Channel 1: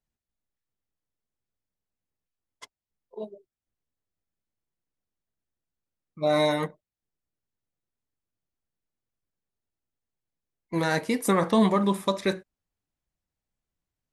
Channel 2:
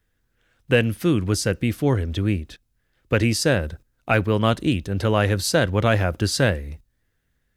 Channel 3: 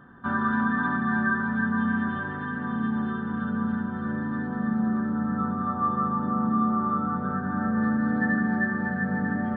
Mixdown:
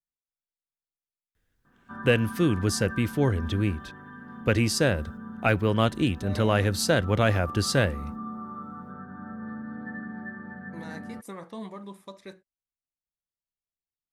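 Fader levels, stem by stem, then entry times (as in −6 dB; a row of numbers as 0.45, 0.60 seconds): −18.0, −3.5, −13.0 decibels; 0.00, 1.35, 1.65 seconds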